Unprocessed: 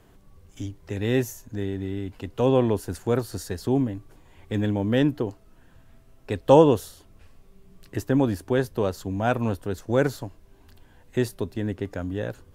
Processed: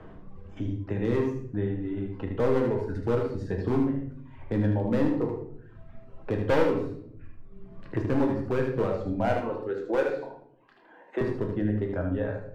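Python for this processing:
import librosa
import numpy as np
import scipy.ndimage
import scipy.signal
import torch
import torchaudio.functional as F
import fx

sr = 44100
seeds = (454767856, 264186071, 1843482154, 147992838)

y = fx.dereverb_blind(x, sr, rt60_s=1.0)
y = scipy.signal.sosfilt(scipy.signal.butter(2, 1700.0, 'lowpass', fs=sr, output='sos'), y)
y = fx.dereverb_blind(y, sr, rt60_s=0.57)
y = fx.highpass(y, sr, hz=320.0, slope=24, at=(9.36, 11.21))
y = np.clip(10.0 ** (19.5 / 20.0) * y, -1.0, 1.0) / 10.0 ** (19.5 / 20.0)
y = y + 10.0 ** (-6.5 / 20.0) * np.pad(y, (int(76 * sr / 1000.0), 0))[:len(y)]
y = fx.room_shoebox(y, sr, seeds[0], volume_m3=88.0, walls='mixed', distance_m=0.62)
y = fx.band_squash(y, sr, depth_pct=40)
y = y * 10.0 ** (-1.5 / 20.0)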